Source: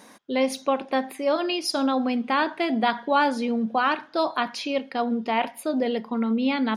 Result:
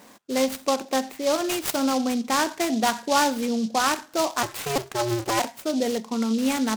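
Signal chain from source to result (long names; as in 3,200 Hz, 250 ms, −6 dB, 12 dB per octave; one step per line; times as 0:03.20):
0:04.43–0:05.40: sub-harmonics by changed cycles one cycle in 2, inverted
short delay modulated by noise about 4,500 Hz, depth 0.065 ms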